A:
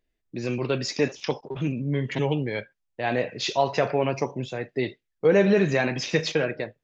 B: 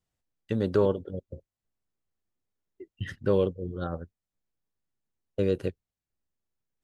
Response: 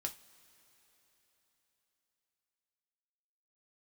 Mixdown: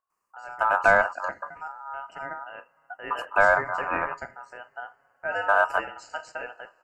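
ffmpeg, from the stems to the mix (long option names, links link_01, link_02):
-filter_complex "[0:a]volume=-17.5dB,asplit=2[link_01][link_02];[link_02]volume=-3dB[link_03];[1:a]adelay=100,volume=2dB[link_04];[2:a]atrim=start_sample=2205[link_05];[link_03][link_05]afir=irnorm=-1:irlink=0[link_06];[link_01][link_04][link_06]amix=inputs=3:normalize=0,asuperstop=centerf=3200:order=20:qfactor=0.88,aeval=exprs='val(0)*sin(2*PI*1100*n/s)':channel_layout=same,acontrast=42"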